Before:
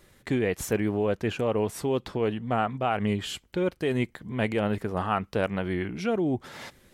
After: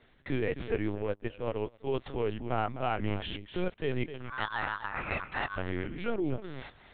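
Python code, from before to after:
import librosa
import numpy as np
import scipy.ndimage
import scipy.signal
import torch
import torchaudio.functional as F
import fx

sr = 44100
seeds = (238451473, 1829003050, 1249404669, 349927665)

y = fx.tracing_dist(x, sr, depth_ms=0.033)
y = fx.high_shelf(y, sr, hz=2000.0, db=2.5)
y = fx.ring_mod(y, sr, carrier_hz=1300.0, at=(4.1, 5.56), fade=0.02)
y = y + 10.0 ** (-11.0 / 20.0) * np.pad(y, (int(253 * sr / 1000.0), 0))[:len(y)]
y = fx.lpc_vocoder(y, sr, seeds[0], excitation='pitch_kept', order=10)
y = fx.upward_expand(y, sr, threshold_db=-38.0, expansion=2.5, at=(0.95, 1.87))
y = y * librosa.db_to_amplitude(-5.0)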